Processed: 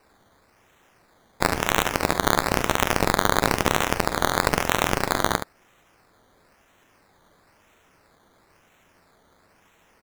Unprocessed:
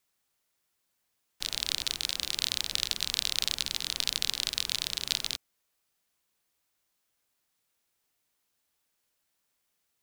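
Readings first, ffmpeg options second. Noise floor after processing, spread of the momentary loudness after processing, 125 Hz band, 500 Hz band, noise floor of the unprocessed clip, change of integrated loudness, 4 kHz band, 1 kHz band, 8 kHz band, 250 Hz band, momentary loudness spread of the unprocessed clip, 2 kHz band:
−61 dBFS, 4 LU, +21.5 dB, +27.5 dB, −79 dBFS, +7.0 dB, −1.5 dB, +26.5 dB, +4.0 dB, +24.5 dB, 3 LU, +15.0 dB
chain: -af "highshelf=frequency=10000:gain=12,acrusher=samples=13:mix=1:aa=0.000001:lfo=1:lforange=7.8:lforate=1,aecho=1:1:11|45|72:0.141|0.158|0.376,alimiter=level_in=10.5dB:limit=-1dB:release=50:level=0:latency=1,volume=-1dB"

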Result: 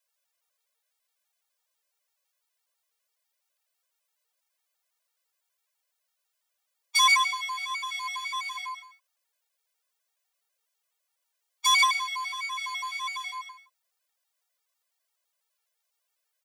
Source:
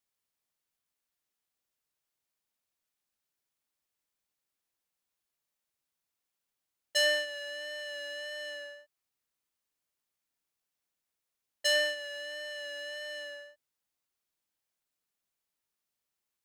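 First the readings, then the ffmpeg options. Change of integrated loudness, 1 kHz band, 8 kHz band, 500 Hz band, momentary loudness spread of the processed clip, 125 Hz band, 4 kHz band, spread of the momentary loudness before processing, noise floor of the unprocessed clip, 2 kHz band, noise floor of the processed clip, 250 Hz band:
+7.0 dB, +30.5 dB, +10.0 dB, below −35 dB, 17 LU, can't be measured, +5.5 dB, 14 LU, below −85 dBFS, +6.0 dB, −81 dBFS, below −35 dB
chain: -af "afreqshift=450,aecho=1:1:55.39|137:0.282|0.398,afftfilt=real='re*gt(sin(2*PI*6*pts/sr)*(1-2*mod(floor(b*sr/1024/240),2)),0)':imag='im*gt(sin(2*PI*6*pts/sr)*(1-2*mod(floor(b*sr/1024/240),2)),0)':win_size=1024:overlap=0.75,volume=9dB"

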